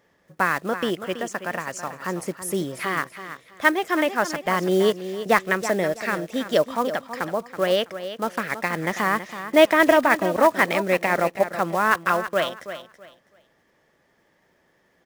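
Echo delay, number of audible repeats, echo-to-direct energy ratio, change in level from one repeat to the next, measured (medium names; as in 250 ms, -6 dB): 327 ms, 2, -11.0 dB, -12.5 dB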